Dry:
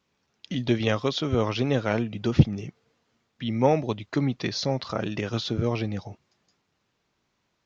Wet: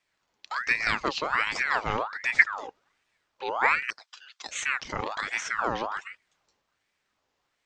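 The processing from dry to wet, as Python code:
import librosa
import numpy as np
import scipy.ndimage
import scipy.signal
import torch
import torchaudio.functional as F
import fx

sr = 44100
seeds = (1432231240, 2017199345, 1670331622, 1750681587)

y = fx.ellip_highpass(x, sr, hz=2200.0, order=4, stop_db=50, at=(3.9, 4.55))
y = fx.ring_lfo(y, sr, carrier_hz=1400.0, swing_pct=55, hz=1.3)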